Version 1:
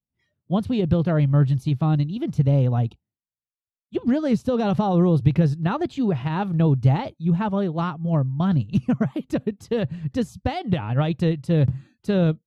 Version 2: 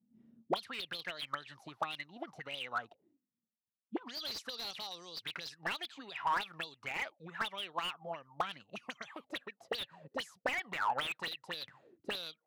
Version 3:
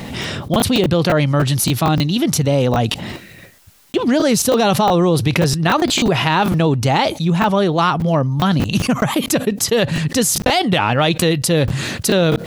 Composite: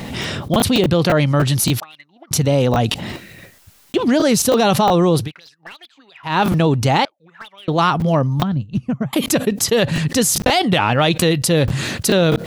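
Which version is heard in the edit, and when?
3
1.8–2.31 from 2
5.24–6.31 from 2, crossfade 0.16 s
7.05–7.68 from 2
8.43–9.13 from 1

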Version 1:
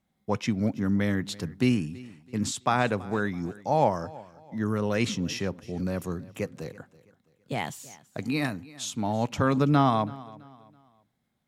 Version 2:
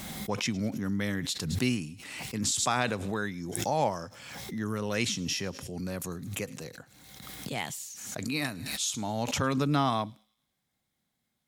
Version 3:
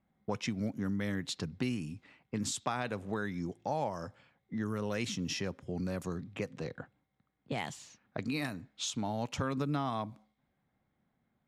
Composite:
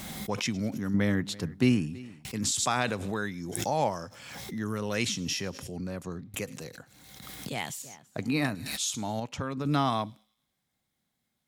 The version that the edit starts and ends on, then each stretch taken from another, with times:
2
0.94–2.25 from 1
5.77–6.34 from 3
7.82–8.55 from 1
9.2–9.65 from 3

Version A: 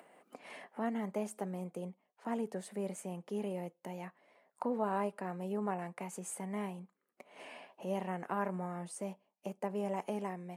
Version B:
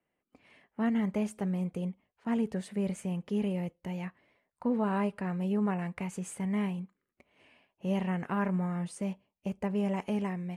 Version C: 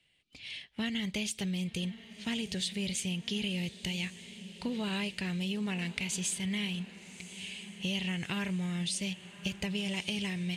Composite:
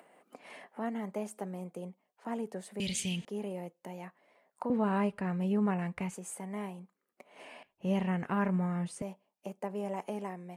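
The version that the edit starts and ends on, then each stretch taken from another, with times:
A
2.8–3.25 from C
4.7–6.15 from B
7.63–9.02 from B

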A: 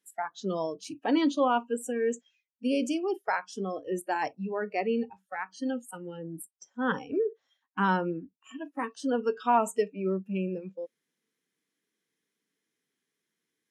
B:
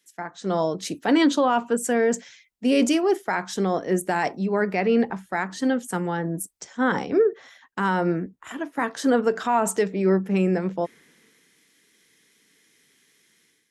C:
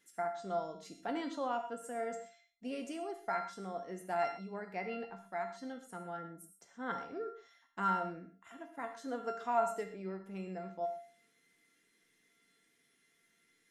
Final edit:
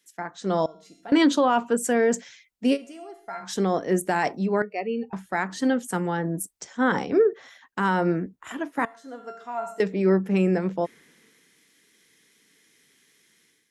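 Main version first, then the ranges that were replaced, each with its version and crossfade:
B
0.66–1.12 from C
2.75–3.43 from C, crossfade 0.06 s
4.62–5.13 from A
8.85–9.8 from C

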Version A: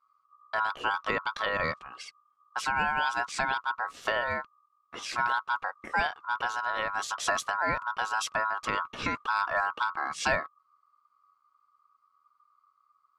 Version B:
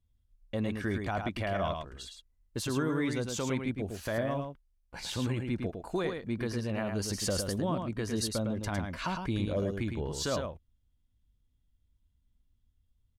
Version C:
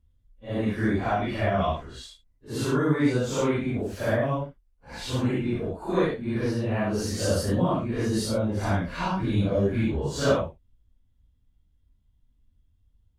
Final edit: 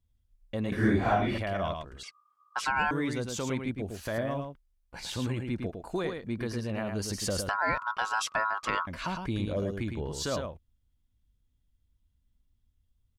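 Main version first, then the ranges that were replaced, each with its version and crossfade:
B
0.72–1.38 from C
2.03–2.91 from A
7.49–8.87 from A

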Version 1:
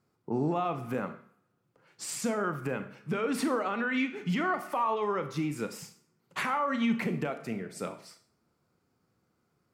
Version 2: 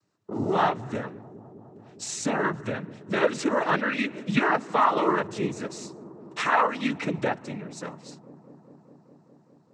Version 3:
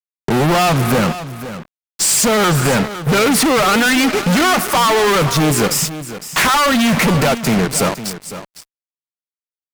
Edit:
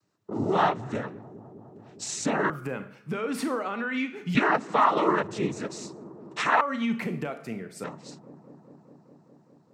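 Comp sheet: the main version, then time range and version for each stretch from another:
2
2.5–4.35 from 1
6.61–7.84 from 1
not used: 3

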